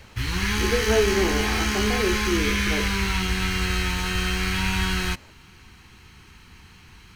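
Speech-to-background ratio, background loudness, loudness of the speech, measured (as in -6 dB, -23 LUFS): -3.0 dB, -24.0 LUFS, -27.0 LUFS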